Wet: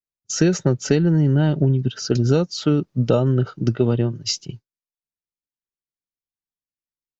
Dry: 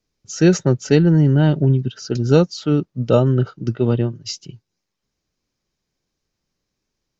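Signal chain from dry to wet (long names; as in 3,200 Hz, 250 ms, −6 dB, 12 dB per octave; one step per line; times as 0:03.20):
downward expander −34 dBFS
downward compressor, threshold −19 dBFS, peak gain reduction 11 dB
level +5 dB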